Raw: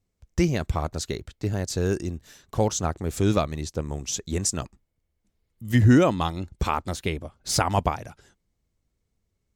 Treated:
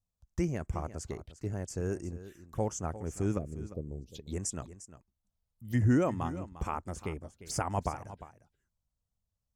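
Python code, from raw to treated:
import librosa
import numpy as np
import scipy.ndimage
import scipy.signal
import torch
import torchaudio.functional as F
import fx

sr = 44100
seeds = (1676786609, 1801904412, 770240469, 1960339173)

y = fx.curve_eq(x, sr, hz=(460.0, 1300.0, 13000.0), db=(0, -30, -9), at=(3.37, 4.14), fade=0.02)
y = fx.env_phaser(y, sr, low_hz=350.0, high_hz=3900.0, full_db=-26.0)
y = y + 10.0 ** (-14.5 / 20.0) * np.pad(y, (int(351 * sr / 1000.0), 0))[:len(y)]
y = F.gain(torch.from_numpy(y), -9.0).numpy()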